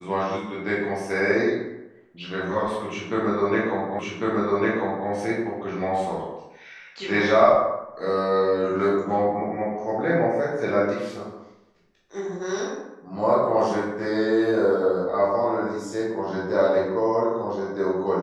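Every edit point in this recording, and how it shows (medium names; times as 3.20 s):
3.99 s: repeat of the last 1.1 s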